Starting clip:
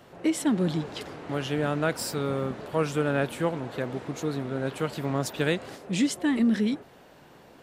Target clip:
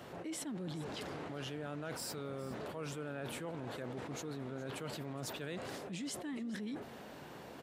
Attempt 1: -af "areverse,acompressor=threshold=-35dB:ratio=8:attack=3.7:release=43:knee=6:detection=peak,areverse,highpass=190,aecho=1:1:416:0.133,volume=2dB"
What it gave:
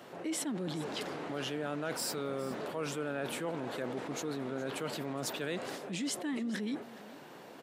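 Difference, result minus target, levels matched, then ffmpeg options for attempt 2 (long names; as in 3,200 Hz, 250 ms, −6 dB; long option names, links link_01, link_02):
downward compressor: peak gain reduction −7 dB; 125 Hz band −5.0 dB
-af "areverse,acompressor=threshold=-43dB:ratio=8:attack=3.7:release=43:knee=6:detection=peak,areverse,highpass=55,aecho=1:1:416:0.133,volume=2dB"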